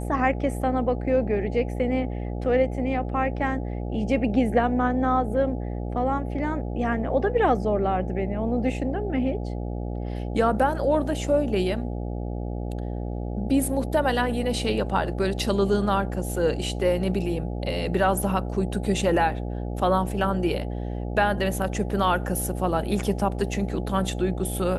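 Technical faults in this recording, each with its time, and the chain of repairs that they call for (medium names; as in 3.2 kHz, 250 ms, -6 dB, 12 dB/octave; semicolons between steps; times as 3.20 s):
buzz 60 Hz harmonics 14 -30 dBFS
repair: de-hum 60 Hz, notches 14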